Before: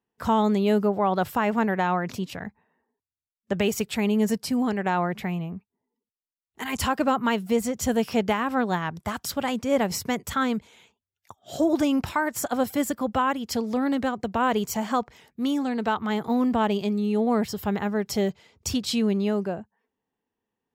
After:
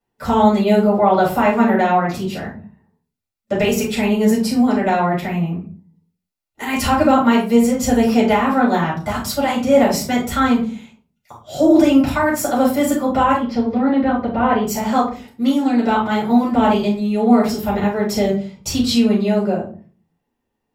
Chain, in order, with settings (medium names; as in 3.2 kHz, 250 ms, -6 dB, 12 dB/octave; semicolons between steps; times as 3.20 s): 13.36–14.67 s: distance through air 290 m; simulated room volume 230 m³, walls furnished, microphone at 6.8 m; trim -3.5 dB